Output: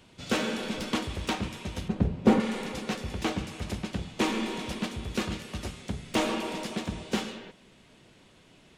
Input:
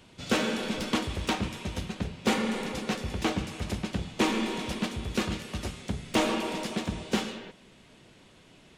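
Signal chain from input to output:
0:01.88–0:02.40: tilt shelving filter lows +9.5 dB, about 1,300 Hz
level −1.5 dB

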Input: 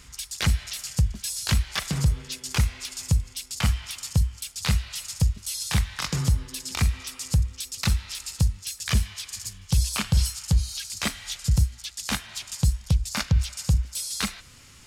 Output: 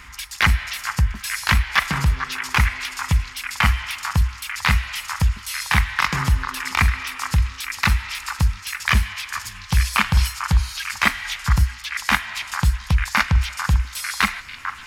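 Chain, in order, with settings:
octave-band graphic EQ 125/500/1,000/2,000/4,000/8,000 Hz −6/−7/+9/+9/−3/−8 dB
on a send: echo through a band-pass that steps 446 ms, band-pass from 1,200 Hz, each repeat 0.7 octaves, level −6 dB
on the sum: level +5.5 dB

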